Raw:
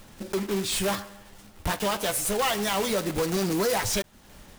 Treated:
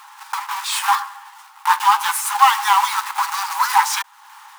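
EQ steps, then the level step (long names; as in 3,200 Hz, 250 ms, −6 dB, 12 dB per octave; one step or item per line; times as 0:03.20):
linear-phase brick-wall high-pass 780 Hz
parametric band 990 Hz +14.5 dB 1.3 octaves
+4.5 dB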